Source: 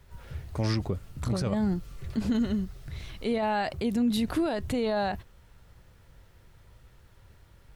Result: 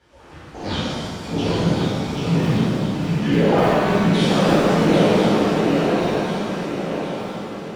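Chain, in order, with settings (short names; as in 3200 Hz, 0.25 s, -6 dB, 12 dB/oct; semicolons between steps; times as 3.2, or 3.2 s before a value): repeated pitch sweeps -11 st, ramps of 0.159 s; BPF 160–6200 Hz; on a send: swung echo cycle 1.049 s, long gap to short 3:1, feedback 48%, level -3.5 dB; on the sum: crackling interface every 0.30 s, samples 2048, repeat, from 0.54; shimmer reverb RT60 1.8 s, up +7 st, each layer -8 dB, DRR -11.5 dB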